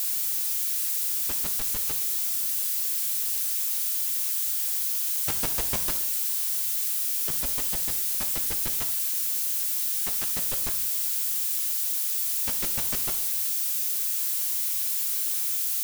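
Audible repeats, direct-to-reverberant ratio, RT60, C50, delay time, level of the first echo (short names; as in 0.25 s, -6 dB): none, 7.0 dB, 0.75 s, 11.5 dB, none, none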